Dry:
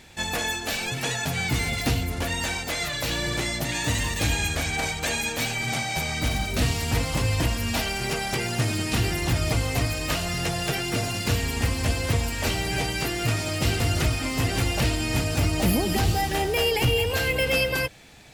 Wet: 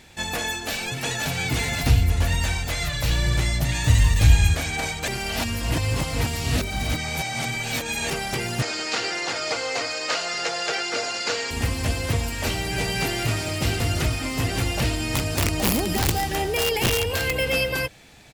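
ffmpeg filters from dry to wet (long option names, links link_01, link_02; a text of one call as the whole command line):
ffmpeg -i in.wav -filter_complex "[0:a]asplit=2[link_01][link_02];[link_02]afade=type=in:start_time=0.52:duration=0.01,afade=type=out:start_time=1.3:duration=0.01,aecho=0:1:530|1060|1590|2120|2650|3180:0.630957|0.283931|0.127769|0.057496|0.0258732|0.0116429[link_03];[link_01][link_03]amix=inputs=2:normalize=0,asplit=3[link_04][link_05][link_06];[link_04]afade=type=out:start_time=1.83:duration=0.02[link_07];[link_05]asubboost=boost=7:cutoff=120,afade=type=in:start_time=1.83:duration=0.02,afade=type=out:start_time=4.54:duration=0.02[link_08];[link_06]afade=type=in:start_time=4.54:duration=0.02[link_09];[link_07][link_08][link_09]amix=inputs=3:normalize=0,asettb=1/sr,asplit=3[link_10][link_11][link_12];[link_10]atrim=end=8.624[link_13];[link_11]atrim=start=8.62:end=11.51,asetpts=PTS-STARTPTS,afade=type=in:duration=0.004:curve=qsin,afade=type=out:start_time=2.886:duration=0.004:curve=qsin,highpass=460,equalizer=frequency=490:width_type=q:width=4:gain=8,equalizer=frequency=830:width_type=q:width=4:gain=3,equalizer=frequency=1400:width_type=q:width=4:gain=7,equalizer=frequency=2100:width_type=q:width=4:gain=3,equalizer=frequency=4600:width_type=q:width=4:gain=7,equalizer=frequency=6800:width_type=q:width=4:gain=5,lowpass=frequency=7300:width=0.5412,lowpass=frequency=7300:width=1.3066[link_14];[link_12]atrim=start=11.506[link_15];[link_13][link_14]acrossfade=duration=0.004:curve1=hsin:curve2=qsin[link_16];[link_16][link_15]acrossfade=duration=0.004:curve1=qsin:curve2=hsin,asplit=2[link_17][link_18];[link_18]afade=type=in:start_time=12.55:duration=0.01,afade=type=out:start_time=13:duration=0.01,aecho=0:1:230|460|690|920|1150|1380|1610|1840:0.707946|0.38937|0.214154|0.117784|0.0647815|0.0356298|0.0195964|0.010778[link_19];[link_17][link_19]amix=inputs=2:normalize=0,asettb=1/sr,asplit=3[link_20][link_21][link_22];[link_20]atrim=end=15.004[link_23];[link_21]atrim=start=15:end=17.33,asetpts=PTS-STARTPTS,afade=type=in:duration=0.004:curve=qsin,afade=type=out:start_time=2.326:duration=0.004:curve=qsin,aeval=exprs='(mod(5.31*val(0)+1,2)-1)/5.31':channel_layout=same[link_24];[link_22]atrim=start=17.326[link_25];[link_23][link_24]acrossfade=duration=0.004:curve1=hsin:curve2=qsin[link_26];[link_26][link_25]acrossfade=duration=0.004:curve1=qsin:curve2=hsin,asplit=3[link_27][link_28][link_29];[link_27]atrim=end=5.082[link_30];[link_28]atrim=start=5.078:end=8.102,asetpts=PTS-STARTPTS,areverse[link_31];[link_29]atrim=start=8.098[link_32];[link_30][link_31]acrossfade=duration=0.004:curve1=hsin:curve2=hsin[link_33];[link_33][link_32]acrossfade=duration=0.004:curve1=hsin:curve2=hsin" out.wav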